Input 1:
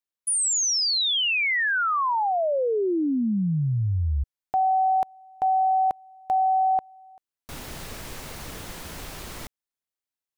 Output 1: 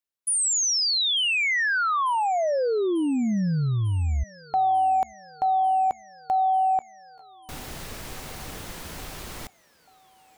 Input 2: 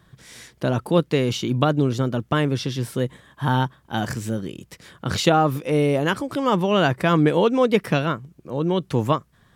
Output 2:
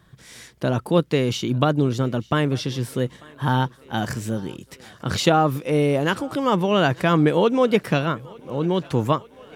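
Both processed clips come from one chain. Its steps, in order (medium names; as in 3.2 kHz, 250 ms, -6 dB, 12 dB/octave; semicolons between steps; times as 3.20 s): thinning echo 894 ms, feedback 74%, high-pass 240 Hz, level -24 dB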